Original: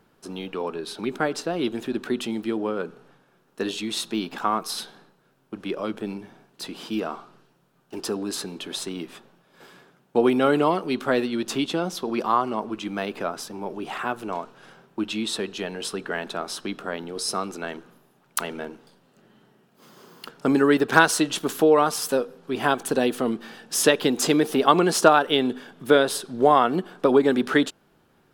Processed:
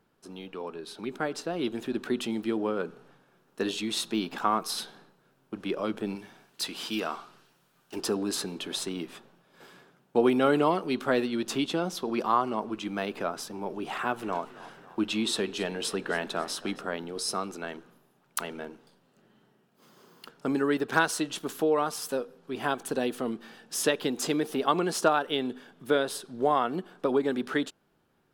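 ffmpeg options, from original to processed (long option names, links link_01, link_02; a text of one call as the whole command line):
ffmpeg -i in.wav -filter_complex "[0:a]asettb=1/sr,asplit=3[link_01][link_02][link_03];[link_01]atrim=end=6.154[link_04];[link_02]atrim=start=6.15:end=7.96,asetpts=PTS-STARTPTS,afade=type=in:duration=0.004:curve=qsin,afade=type=out:start_time=1.806:duration=0.004:curve=qsin,tiltshelf=frequency=1100:gain=-5.5[link_05];[link_03]atrim=start=7.956[link_06];[link_04][link_05]acrossfade=duration=0.004:curve1=hsin:curve2=qsin[link_07];[link_07][link_06]acrossfade=duration=0.004:curve1=qsin:curve2=hsin,asettb=1/sr,asplit=3[link_08][link_09][link_10];[link_08]atrim=end=13.864[link_11];[link_09]atrim=start=13.86:end=16.81,asetpts=PTS-STARTPTS,afade=type=in:duration=0.004:curve=qsin,afade=type=out:start_time=2.946:duration=0.004:curve=qsin,asplit=5[link_12][link_13][link_14][link_15][link_16];[link_13]adelay=274,afreqshift=41,volume=-18dB[link_17];[link_14]adelay=548,afreqshift=82,volume=-23.5dB[link_18];[link_15]adelay=822,afreqshift=123,volume=-29dB[link_19];[link_16]adelay=1096,afreqshift=164,volume=-34.5dB[link_20];[link_12][link_17][link_18][link_19][link_20]amix=inputs=5:normalize=0,atrim=end_sample=130095[link_21];[link_10]atrim=start=16.806[link_22];[link_11][link_21]acrossfade=duration=0.004:curve1=hsin:curve2=qsin[link_23];[link_23][link_22]acrossfade=duration=0.004:curve1=qsin:curve2=hsin,dynaudnorm=framelen=290:gausssize=11:maxgain=8dB,volume=-8.5dB" out.wav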